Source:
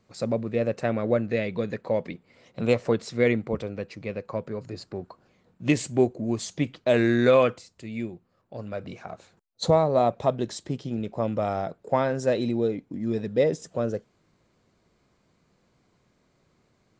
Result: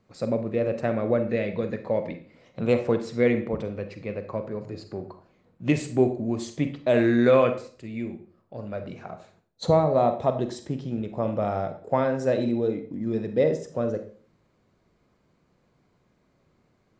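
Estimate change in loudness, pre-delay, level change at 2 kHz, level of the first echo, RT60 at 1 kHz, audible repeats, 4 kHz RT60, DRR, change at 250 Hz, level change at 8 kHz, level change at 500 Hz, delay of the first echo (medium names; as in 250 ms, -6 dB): +0.5 dB, 36 ms, -1.5 dB, no echo, 0.45 s, no echo, 0.40 s, 8.0 dB, +1.0 dB, no reading, +0.5 dB, no echo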